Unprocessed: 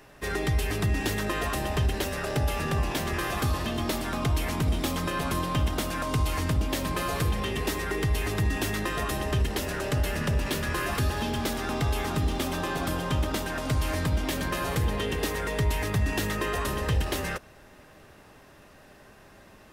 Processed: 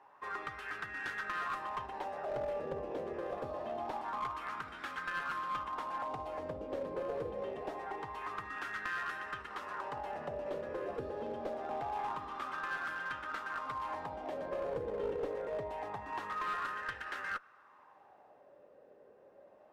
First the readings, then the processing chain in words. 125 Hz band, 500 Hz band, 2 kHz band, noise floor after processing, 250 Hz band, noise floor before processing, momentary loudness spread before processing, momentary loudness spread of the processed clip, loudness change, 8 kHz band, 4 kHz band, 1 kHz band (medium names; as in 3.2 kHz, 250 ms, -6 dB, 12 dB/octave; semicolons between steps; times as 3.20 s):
-27.0 dB, -7.0 dB, -7.5 dB, -62 dBFS, -18.0 dB, -53 dBFS, 2 LU, 4 LU, -11.0 dB, under -25 dB, -19.0 dB, -5.0 dB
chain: wah-wah 0.25 Hz 500–1500 Hz, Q 4.7; band-stop 650 Hz, Q 13; one-sided clip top -37 dBFS; trim +3 dB